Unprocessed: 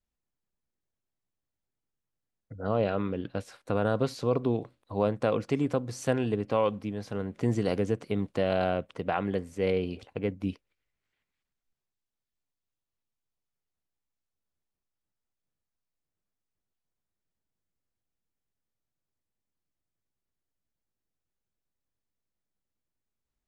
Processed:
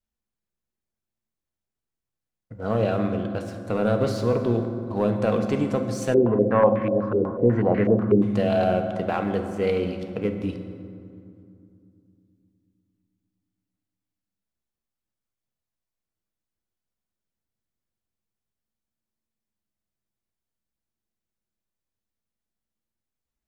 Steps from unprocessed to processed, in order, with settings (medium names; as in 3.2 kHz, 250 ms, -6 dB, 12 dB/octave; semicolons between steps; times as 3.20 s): waveshaping leveller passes 1; reverberation RT60 2.6 s, pre-delay 5 ms, DRR 5 dB; 6.14–8.22 s: step-sequenced low-pass 8.1 Hz 410–2000 Hz